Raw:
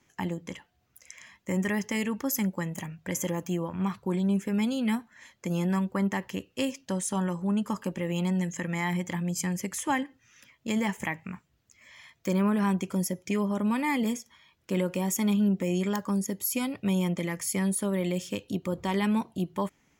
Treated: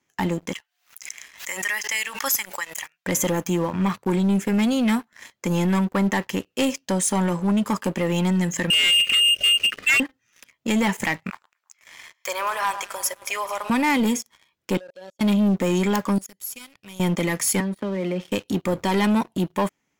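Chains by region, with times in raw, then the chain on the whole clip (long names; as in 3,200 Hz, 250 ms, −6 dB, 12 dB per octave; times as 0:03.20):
0:00.53–0:03.06: high-pass filter 1,500 Hz + background raised ahead of every attack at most 88 dB per second
0:08.70–0:10.00: voice inversion scrambler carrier 3,000 Hz + leveller curve on the samples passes 2 + Butterworth band-reject 900 Hz, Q 0.9
0:11.30–0:13.70: high-pass filter 670 Hz 24 dB per octave + delay that swaps between a low-pass and a high-pass 109 ms, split 1,500 Hz, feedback 70%, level −12 dB
0:14.77–0:15.21: pair of resonant band-passes 1,500 Hz, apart 2.8 octaves + output level in coarse steps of 24 dB
0:16.18–0:17.00: guitar amp tone stack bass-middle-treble 5-5-5 + downward compressor 1.5 to 1, threshold −54 dBFS
0:17.60–0:18.32: Butterworth high-pass 170 Hz 48 dB per octave + high-frequency loss of the air 350 metres + downward compressor 4 to 1, threshold −32 dBFS
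whole clip: low-shelf EQ 110 Hz −11.5 dB; leveller curve on the samples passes 3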